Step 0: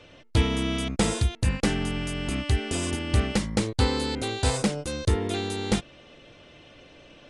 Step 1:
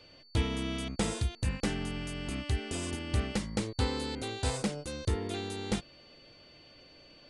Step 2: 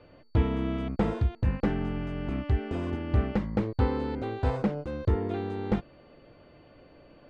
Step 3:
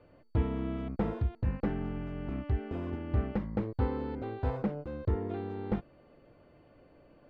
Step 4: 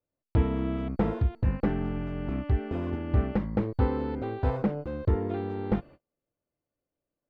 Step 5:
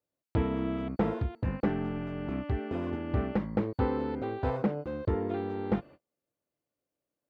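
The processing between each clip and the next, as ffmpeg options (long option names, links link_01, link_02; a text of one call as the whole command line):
ffmpeg -i in.wav -af "aeval=exprs='val(0)+0.00316*sin(2*PI*4500*n/s)':channel_layout=same,volume=-7.5dB" out.wav
ffmpeg -i in.wav -af "lowpass=1400,volume=5.5dB" out.wav
ffmpeg -i in.wav -af "aemphasis=mode=reproduction:type=75fm,volume=-5.5dB" out.wav
ffmpeg -i in.wav -af "agate=range=-35dB:threshold=-51dB:ratio=16:detection=peak,volume=5dB" out.wav
ffmpeg -i in.wav -af "highpass=frequency=150:poles=1" out.wav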